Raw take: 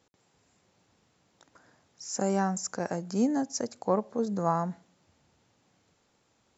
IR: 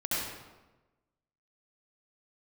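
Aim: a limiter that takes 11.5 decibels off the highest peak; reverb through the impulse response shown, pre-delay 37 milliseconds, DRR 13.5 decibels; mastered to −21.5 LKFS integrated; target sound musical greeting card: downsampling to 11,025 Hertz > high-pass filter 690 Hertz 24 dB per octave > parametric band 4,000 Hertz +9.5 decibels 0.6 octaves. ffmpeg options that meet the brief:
-filter_complex "[0:a]alimiter=limit=-24dB:level=0:latency=1,asplit=2[link_01][link_02];[1:a]atrim=start_sample=2205,adelay=37[link_03];[link_02][link_03]afir=irnorm=-1:irlink=0,volume=-21dB[link_04];[link_01][link_04]amix=inputs=2:normalize=0,aresample=11025,aresample=44100,highpass=frequency=690:width=0.5412,highpass=frequency=690:width=1.3066,equalizer=frequency=4000:width_type=o:width=0.6:gain=9.5,volume=21.5dB"

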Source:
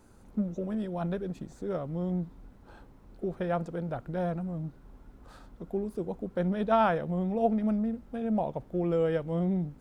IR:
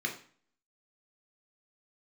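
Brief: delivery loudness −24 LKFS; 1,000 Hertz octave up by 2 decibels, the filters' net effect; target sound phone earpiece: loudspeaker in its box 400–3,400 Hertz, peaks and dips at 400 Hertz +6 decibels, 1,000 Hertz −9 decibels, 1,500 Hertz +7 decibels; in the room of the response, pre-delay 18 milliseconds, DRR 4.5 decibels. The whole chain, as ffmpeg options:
-filter_complex "[0:a]equalizer=frequency=1000:width_type=o:gain=5.5,asplit=2[link_01][link_02];[1:a]atrim=start_sample=2205,adelay=18[link_03];[link_02][link_03]afir=irnorm=-1:irlink=0,volume=-10dB[link_04];[link_01][link_04]amix=inputs=2:normalize=0,highpass=400,equalizer=frequency=400:width_type=q:width=4:gain=6,equalizer=frequency=1000:width_type=q:width=4:gain=-9,equalizer=frequency=1500:width_type=q:width=4:gain=7,lowpass=frequency=3400:width=0.5412,lowpass=frequency=3400:width=1.3066,volume=7dB"

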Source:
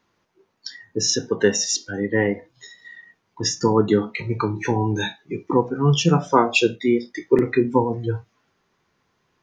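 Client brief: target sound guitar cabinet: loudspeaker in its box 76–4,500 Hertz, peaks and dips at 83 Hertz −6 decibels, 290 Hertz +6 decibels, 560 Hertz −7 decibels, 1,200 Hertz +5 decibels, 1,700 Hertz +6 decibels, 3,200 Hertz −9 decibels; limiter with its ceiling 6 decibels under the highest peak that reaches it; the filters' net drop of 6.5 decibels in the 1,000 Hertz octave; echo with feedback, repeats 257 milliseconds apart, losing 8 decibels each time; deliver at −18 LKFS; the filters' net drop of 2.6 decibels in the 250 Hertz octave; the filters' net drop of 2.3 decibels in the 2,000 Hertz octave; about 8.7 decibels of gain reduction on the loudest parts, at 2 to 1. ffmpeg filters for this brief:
ffmpeg -i in.wav -af "equalizer=frequency=250:width_type=o:gain=-6,equalizer=frequency=1000:width_type=o:gain=-9,equalizer=frequency=2000:width_type=o:gain=-3,acompressor=threshold=-31dB:ratio=2,alimiter=limit=-21dB:level=0:latency=1,highpass=76,equalizer=frequency=83:width_type=q:width=4:gain=-6,equalizer=frequency=290:width_type=q:width=4:gain=6,equalizer=frequency=560:width_type=q:width=4:gain=-7,equalizer=frequency=1200:width_type=q:width=4:gain=5,equalizer=frequency=1700:width_type=q:width=4:gain=6,equalizer=frequency=3200:width_type=q:width=4:gain=-9,lowpass=frequency=4500:width=0.5412,lowpass=frequency=4500:width=1.3066,aecho=1:1:257|514|771|1028|1285:0.398|0.159|0.0637|0.0255|0.0102,volume=15dB" out.wav

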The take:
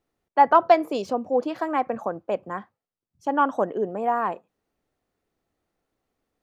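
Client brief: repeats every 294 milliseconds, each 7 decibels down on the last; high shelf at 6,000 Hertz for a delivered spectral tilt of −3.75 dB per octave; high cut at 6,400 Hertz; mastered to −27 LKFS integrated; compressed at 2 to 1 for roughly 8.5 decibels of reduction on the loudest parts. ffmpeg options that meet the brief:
ffmpeg -i in.wav -af "lowpass=6400,highshelf=frequency=6000:gain=6,acompressor=threshold=-26dB:ratio=2,aecho=1:1:294|588|882|1176|1470:0.447|0.201|0.0905|0.0407|0.0183,volume=1.5dB" out.wav

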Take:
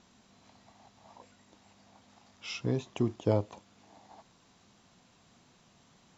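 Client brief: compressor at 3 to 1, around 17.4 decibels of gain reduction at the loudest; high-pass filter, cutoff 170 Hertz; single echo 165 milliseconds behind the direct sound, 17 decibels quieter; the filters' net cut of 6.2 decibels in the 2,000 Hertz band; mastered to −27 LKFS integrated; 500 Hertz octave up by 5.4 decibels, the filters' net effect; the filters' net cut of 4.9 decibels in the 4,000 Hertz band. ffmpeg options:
ffmpeg -i in.wav -af "highpass=170,equalizer=frequency=500:width_type=o:gain=7,equalizer=frequency=2000:width_type=o:gain=-7,equalizer=frequency=4000:width_type=o:gain=-4.5,acompressor=threshold=-43dB:ratio=3,aecho=1:1:165:0.141,volume=21.5dB" out.wav

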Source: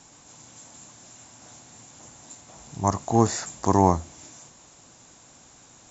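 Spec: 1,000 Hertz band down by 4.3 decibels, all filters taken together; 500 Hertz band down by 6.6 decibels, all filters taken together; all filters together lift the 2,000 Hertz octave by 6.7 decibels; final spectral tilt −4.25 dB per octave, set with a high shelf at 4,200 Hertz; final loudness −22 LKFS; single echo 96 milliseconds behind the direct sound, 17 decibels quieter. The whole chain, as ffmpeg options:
ffmpeg -i in.wav -af "equalizer=frequency=500:width_type=o:gain=-9,equalizer=frequency=1000:width_type=o:gain=-4,equalizer=frequency=2000:width_type=o:gain=8.5,highshelf=frequency=4200:gain=7,aecho=1:1:96:0.141,volume=5dB" out.wav

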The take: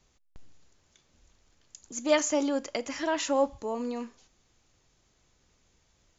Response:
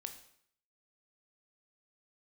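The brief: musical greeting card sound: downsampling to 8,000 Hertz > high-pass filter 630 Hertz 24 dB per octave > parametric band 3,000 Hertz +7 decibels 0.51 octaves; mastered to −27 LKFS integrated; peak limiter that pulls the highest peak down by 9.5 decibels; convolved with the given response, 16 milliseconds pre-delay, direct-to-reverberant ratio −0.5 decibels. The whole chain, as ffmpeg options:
-filter_complex "[0:a]alimiter=limit=-20dB:level=0:latency=1,asplit=2[link_01][link_02];[1:a]atrim=start_sample=2205,adelay=16[link_03];[link_02][link_03]afir=irnorm=-1:irlink=0,volume=4dB[link_04];[link_01][link_04]amix=inputs=2:normalize=0,aresample=8000,aresample=44100,highpass=frequency=630:width=0.5412,highpass=frequency=630:width=1.3066,equalizer=frequency=3000:width_type=o:width=0.51:gain=7,volume=6dB"

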